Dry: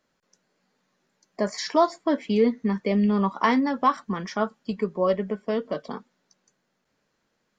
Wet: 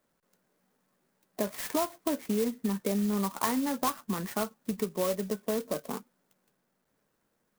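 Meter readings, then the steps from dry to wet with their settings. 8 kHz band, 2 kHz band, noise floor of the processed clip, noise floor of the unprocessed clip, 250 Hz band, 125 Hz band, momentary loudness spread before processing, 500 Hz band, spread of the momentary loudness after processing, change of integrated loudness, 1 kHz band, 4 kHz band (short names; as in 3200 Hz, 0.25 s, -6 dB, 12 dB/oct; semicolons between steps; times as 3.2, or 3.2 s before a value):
n/a, -8.5 dB, -77 dBFS, -75 dBFS, -6.5 dB, -6.0 dB, 9 LU, -7.5 dB, 7 LU, -7.0 dB, -9.5 dB, -4.5 dB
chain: LPF 4200 Hz 12 dB/oct; compressor 4:1, threshold -25 dBFS, peak gain reduction 10 dB; clock jitter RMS 0.087 ms; gain -1.5 dB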